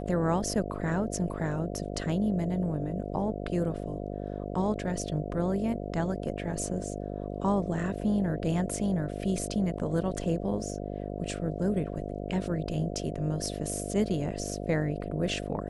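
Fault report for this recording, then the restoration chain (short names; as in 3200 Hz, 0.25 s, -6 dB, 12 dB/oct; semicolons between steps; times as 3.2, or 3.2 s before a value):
buzz 50 Hz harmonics 14 -36 dBFS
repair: de-hum 50 Hz, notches 14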